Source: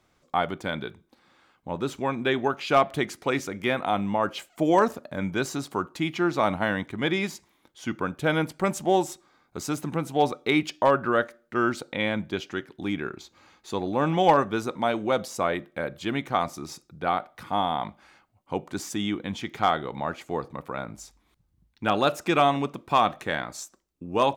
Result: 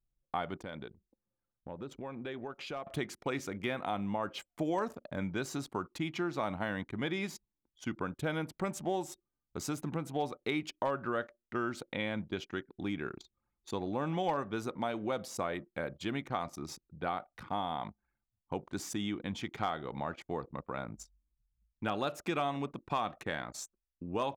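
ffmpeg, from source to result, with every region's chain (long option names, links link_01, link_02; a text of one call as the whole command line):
ffmpeg -i in.wav -filter_complex "[0:a]asettb=1/sr,asplit=3[link_01][link_02][link_03];[link_01]atrim=end=0.614[link_04];[link_02]atrim=start=0.61:end=2.87,asetpts=PTS-STARTPTS,afade=type=in:duration=0.004:curve=qsin,afade=type=out:start_time=2.256:duration=0.004:curve=qsin,equalizer=frequency=510:width_type=o:width=0.44:gain=5,acompressor=threshold=-37dB:ratio=3:attack=3.2:release=140:knee=1:detection=peak[link_05];[link_03]atrim=start=2.866[link_06];[link_04][link_05]acrossfade=duration=0.004:curve1=hsin:curve2=qsin[link_07];[link_07][link_06]acrossfade=duration=0.004:curve1=qsin:curve2=hsin,anlmdn=0.1,lowshelf=frequency=140:gain=3.5,acompressor=threshold=-28dB:ratio=2.5,volume=-5dB" out.wav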